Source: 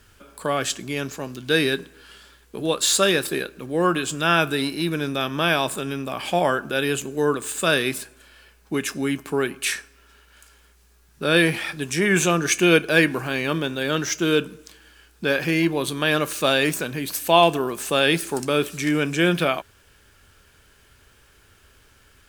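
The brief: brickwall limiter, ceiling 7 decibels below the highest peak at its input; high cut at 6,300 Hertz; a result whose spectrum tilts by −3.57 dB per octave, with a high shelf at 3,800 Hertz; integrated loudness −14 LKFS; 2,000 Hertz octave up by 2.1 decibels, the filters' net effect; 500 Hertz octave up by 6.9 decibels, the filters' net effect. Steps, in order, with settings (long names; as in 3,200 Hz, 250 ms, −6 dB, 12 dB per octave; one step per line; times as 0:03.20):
low-pass filter 6,300 Hz
parametric band 500 Hz +8.5 dB
parametric band 2,000 Hz +3.5 dB
high-shelf EQ 3,800 Hz −4.5 dB
level +5.5 dB
brickwall limiter −0.5 dBFS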